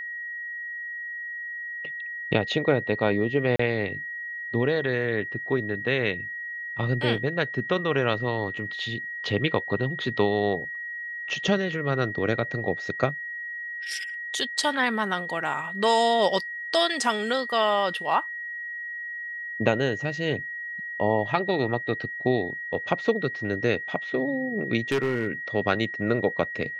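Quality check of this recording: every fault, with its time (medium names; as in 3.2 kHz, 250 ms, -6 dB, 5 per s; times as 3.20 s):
whine 1.9 kHz -32 dBFS
3.56–3.59 s: dropout 34 ms
24.91–25.27 s: clipped -20 dBFS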